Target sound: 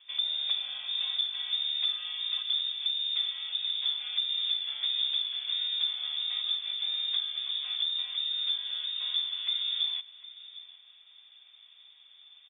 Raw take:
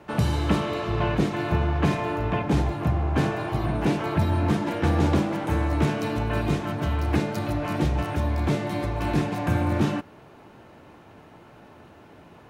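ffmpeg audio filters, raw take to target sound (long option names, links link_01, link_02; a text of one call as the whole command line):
ffmpeg -i in.wav -filter_complex "[0:a]firequalizer=gain_entry='entry(110,0);entry(150,6);entry(630,-13);entry(1200,-7)':delay=0.05:min_phase=1,acompressor=threshold=-23dB:ratio=2,asplit=2[link_01][link_02];[link_02]aecho=0:1:756:0.133[link_03];[link_01][link_03]amix=inputs=2:normalize=0,lowpass=frequency=3100:width_type=q:width=0.5098,lowpass=frequency=3100:width_type=q:width=0.6013,lowpass=frequency=3100:width_type=q:width=0.9,lowpass=frequency=3100:width_type=q:width=2.563,afreqshift=-3700,volume=-6.5dB" out.wav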